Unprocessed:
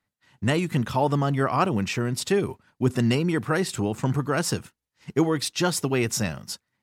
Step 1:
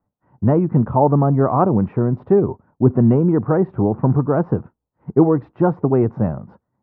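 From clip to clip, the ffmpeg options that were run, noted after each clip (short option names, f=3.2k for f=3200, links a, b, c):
-af "lowpass=f=1k:w=0.5412,lowpass=f=1k:w=1.3066,volume=8.5dB"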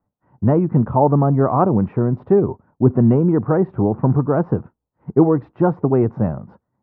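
-af anull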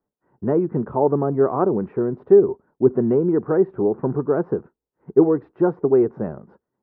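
-af "equalizer=f=100:t=o:w=0.67:g=-9,equalizer=f=400:t=o:w=0.67:g=12,equalizer=f=1.6k:t=o:w=0.67:g=6,volume=-8.5dB"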